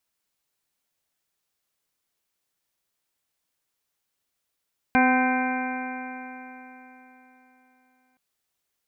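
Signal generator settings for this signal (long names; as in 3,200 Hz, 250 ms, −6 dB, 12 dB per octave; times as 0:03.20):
stiff-string partials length 3.22 s, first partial 254 Hz, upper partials −10/−1/−8/−19/−3.5/−19/−9.5/−7.5 dB, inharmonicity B 0.0011, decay 3.75 s, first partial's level −19 dB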